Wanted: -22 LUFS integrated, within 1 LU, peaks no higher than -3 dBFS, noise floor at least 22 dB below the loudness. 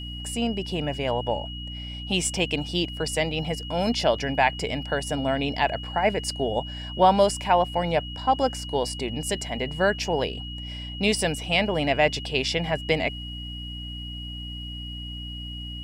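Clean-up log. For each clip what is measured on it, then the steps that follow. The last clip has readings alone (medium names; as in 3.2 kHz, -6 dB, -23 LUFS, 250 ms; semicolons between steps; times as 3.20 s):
hum 60 Hz; highest harmonic 300 Hz; hum level -34 dBFS; steady tone 2.9 kHz; tone level -37 dBFS; loudness -26.0 LUFS; peak level -7.5 dBFS; loudness target -22.0 LUFS
-> hum notches 60/120/180/240/300 Hz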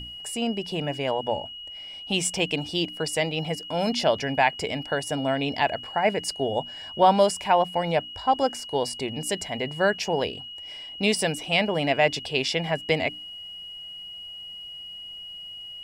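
hum not found; steady tone 2.9 kHz; tone level -37 dBFS
-> band-stop 2.9 kHz, Q 30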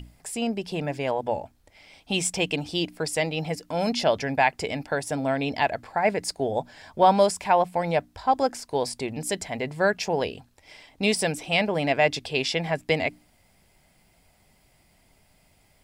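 steady tone not found; loudness -25.5 LUFS; peak level -7.5 dBFS; loudness target -22.0 LUFS
-> trim +3.5 dB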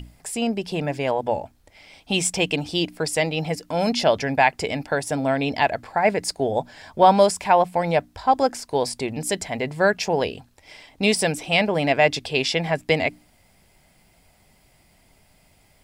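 loudness -22.0 LUFS; peak level -4.0 dBFS; noise floor -59 dBFS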